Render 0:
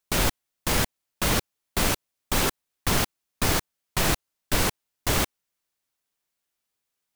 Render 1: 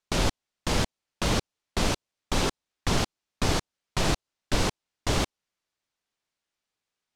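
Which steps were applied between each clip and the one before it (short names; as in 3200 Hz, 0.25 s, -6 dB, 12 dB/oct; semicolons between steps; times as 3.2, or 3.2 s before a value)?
LPF 6200 Hz 12 dB/oct; dynamic EQ 1800 Hz, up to -5 dB, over -40 dBFS, Q 0.98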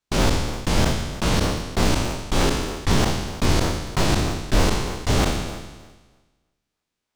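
spectral trails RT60 1.35 s; in parallel at -5 dB: decimation with a swept rate 40×, swing 160% 3.2 Hz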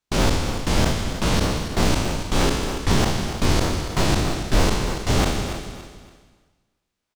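feedback echo 0.283 s, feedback 31%, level -11 dB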